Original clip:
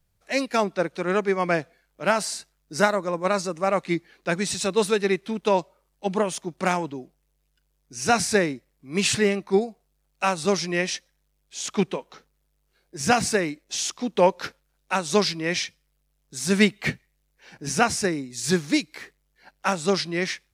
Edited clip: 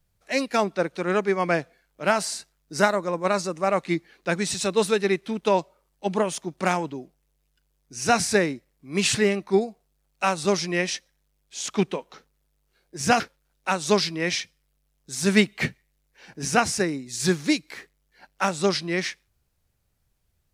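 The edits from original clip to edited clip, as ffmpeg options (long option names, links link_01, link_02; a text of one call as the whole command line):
ffmpeg -i in.wav -filter_complex "[0:a]asplit=2[link_01][link_02];[link_01]atrim=end=13.202[link_03];[link_02]atrim=start=14.438[link_04];[link_03][link_04]acrossfade=duration=0.004:curve1=hsin:curve2=hsin" out.wav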